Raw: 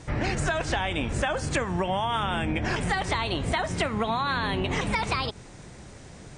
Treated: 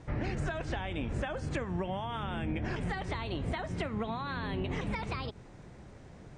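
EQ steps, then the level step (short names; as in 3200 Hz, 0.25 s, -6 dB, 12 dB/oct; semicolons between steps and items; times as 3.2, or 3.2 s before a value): high shelf 2400 Hz -9 dB; dynamic EQ 930 Hz, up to -5 dB, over -37 dBFS, Q 0.77; high shelf 8700 Hz -10.5 dB; -5.0 dB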